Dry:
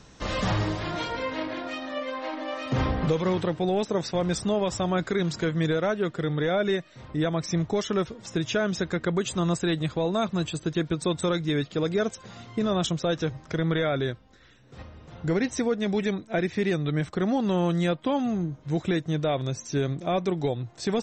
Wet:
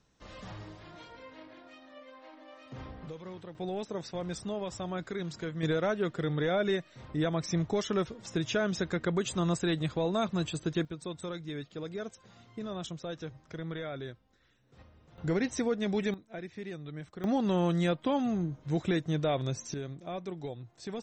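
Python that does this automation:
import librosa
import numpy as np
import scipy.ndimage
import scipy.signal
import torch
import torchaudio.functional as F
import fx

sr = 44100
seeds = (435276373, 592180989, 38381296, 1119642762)

y = fx.gain(x, sr, db=fx.steps((0.0, -19.0), (3.55, -10.5), (5.63, -4.0), (10.85, -13.0), (15.18, -4.5), (16.14, -15.5), (17.24, -3.5), (19.74, -12.5)))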